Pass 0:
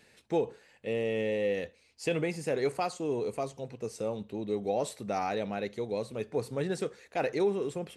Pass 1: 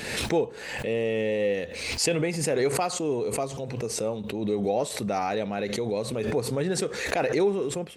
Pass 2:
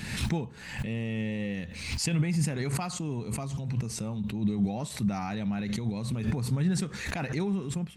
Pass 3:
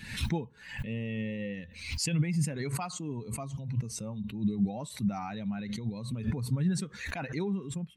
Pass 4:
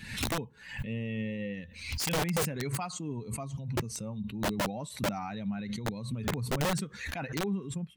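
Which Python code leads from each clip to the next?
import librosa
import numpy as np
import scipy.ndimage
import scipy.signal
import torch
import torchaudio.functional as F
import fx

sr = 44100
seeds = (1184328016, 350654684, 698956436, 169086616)

y1 = fx.pre_swell(x, sr, db_per_s=45.0)
y1 = F.gain(torch.from_numpy(y1), 4.0).numpy()
y2 = fx.curve_eq(y1, sr, hz=(190.0, 480.0, 950.0), db=(0, -23, -11))
y2 = F.gain(torch.from_numpy(y2), 5.5).numpy()
y3 = fx.bin_expand(y2, sr, power=1.5)
y3 = fx.rider(y3, sr, range_db=3, speed_s=2.0)
y4 = (np.mod(10.0 ** (24.5 / 20.0) * y3 + 1.0, 2.0) - 1.0) / 10.0 ** (24.5 / 20.0)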